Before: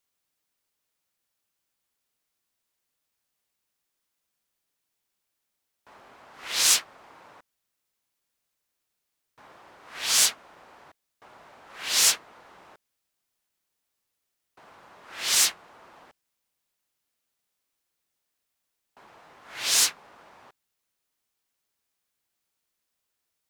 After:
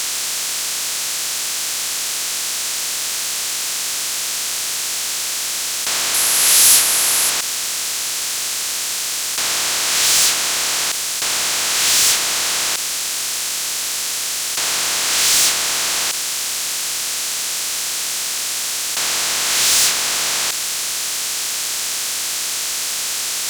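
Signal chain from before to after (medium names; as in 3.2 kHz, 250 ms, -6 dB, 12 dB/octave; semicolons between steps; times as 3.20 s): spectral levelling over time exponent 0.2; waveshaping leveller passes 3; 6.14–7.30 s: peaking EQ 11 kHz +12 dB 0.47 oct; trim -6 dB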